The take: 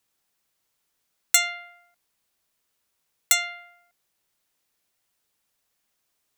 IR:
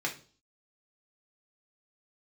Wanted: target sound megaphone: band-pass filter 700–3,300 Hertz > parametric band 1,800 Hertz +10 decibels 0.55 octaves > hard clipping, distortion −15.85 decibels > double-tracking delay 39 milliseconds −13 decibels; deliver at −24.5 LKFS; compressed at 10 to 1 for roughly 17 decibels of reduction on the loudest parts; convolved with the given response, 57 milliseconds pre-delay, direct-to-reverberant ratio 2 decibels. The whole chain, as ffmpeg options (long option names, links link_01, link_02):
-filter_complex "[0:a]acompressor=threshold=-32dB:ratio=10,asplit=2[link_01][link_02];[1:a]atrim=start_sample=2205,adelay=57[link_03];[link_02][link_03]afir=irnorm=-1:irlink=0,volume=-8dB[link_04];[link_01][link_04]amix=inputs=2:normalize=0,highpass=700,lowpass=3300,equalizer=frequency=1800:width_type=o:width=0.55:gain=10,asoftclip=type=hard:threshold=-25.5dB,asplit=2[link_05][link_06];[link_06]adelay=39,volume=-13dB[link_07];[link_05][link_07]amix=inputs=2:normalize=0,volume=17dB"